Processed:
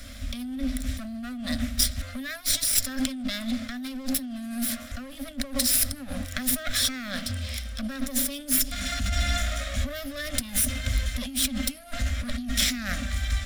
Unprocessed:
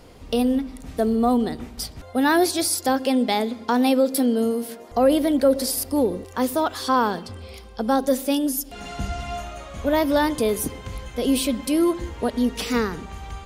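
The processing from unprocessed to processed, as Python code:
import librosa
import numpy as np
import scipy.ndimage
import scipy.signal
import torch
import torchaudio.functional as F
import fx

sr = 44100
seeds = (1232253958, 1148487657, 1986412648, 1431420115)

y = fx.lower_of_two(x, sr, delay_ms=0.55)
y = fx.over_compress(y, sr, threshold_db=-30.0, ratio=-1.0)
y = scipy.signal.sosfilt(scipy.signal.ellip(3, 1.0, 40, [260.0, 580.0], 'bandstop', fs=sr, output='sos'), y)
y = fx.fixed_phaser(y, sr, hz=380.0, stages=4)
y = y * 10.0 ** (5.0 / 20.0)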